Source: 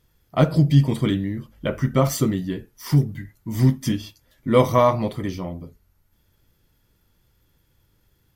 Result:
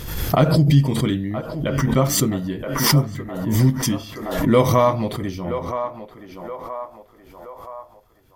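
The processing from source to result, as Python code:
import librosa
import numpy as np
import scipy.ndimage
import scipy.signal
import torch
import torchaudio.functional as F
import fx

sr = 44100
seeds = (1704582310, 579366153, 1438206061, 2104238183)

p1 = x + fx.echo_banded(x, sr, ms=973, feedback_pct=58, hz=880.0, wet_db=-8, dry=0)
y = fx.pre_swell(p1, sr, db_per_s=52.0)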